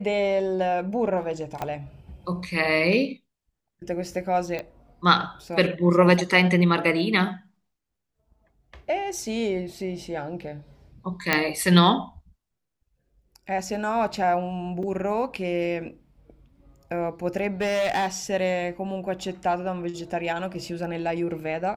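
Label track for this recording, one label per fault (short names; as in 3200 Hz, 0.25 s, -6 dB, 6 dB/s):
1.620000	1.620000	pop -15 dBFS
4.590000	4.590000	pop -18 dBFS
11.330000	11.330000	pop -4 dBFS
14.830000	14.830000	gap 4.2 ms
17.610000	18.070000	clipped -20.5 dBFS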